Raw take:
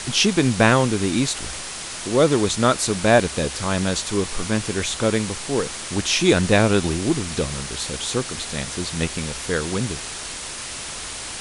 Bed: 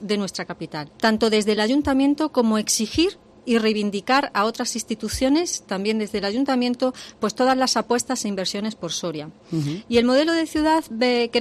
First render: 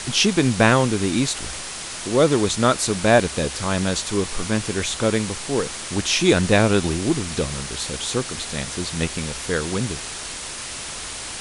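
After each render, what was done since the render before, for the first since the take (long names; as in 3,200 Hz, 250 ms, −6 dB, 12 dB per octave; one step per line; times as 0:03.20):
no processing that can be heard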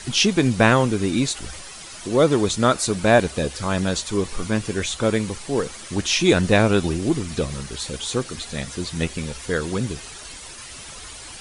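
broadband denoise 10 dB, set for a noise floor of −32 dBFS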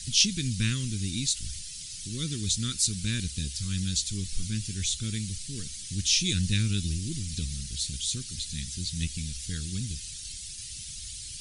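Chebyshev band-stop filter 120–4,300 Hz, order 2
dynamic equaliser 130 Hz, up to −7 dB, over −41 dBFS, Q 2.7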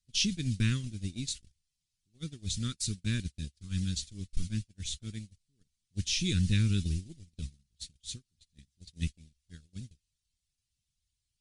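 noise gate −29 dBFS, range −38 dB
high-shelf EQ 3,200 Hz −11.5 dB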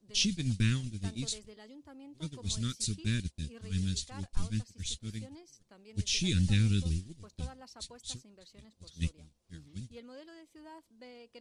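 mix in bed −32.5 dB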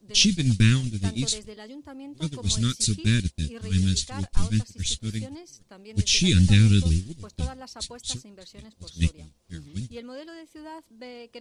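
level +10 dB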